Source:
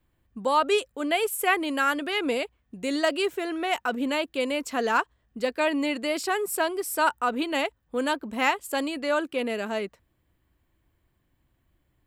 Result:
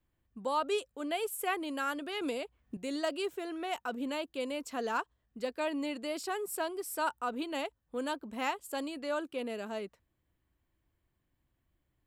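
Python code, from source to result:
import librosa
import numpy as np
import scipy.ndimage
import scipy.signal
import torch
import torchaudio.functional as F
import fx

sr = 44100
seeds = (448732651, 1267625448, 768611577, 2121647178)

y = fx.dynamic_eq(x, sr, hz=2000.0, q=1.7, threshold_db=-42.0, ratio=4.0, max_db=-5)
y = fx.band_squash(y, sr, depth_pct=100, at=(2.21, 2.77))
y = y * 10.0 ** (-8.5 / 20.0)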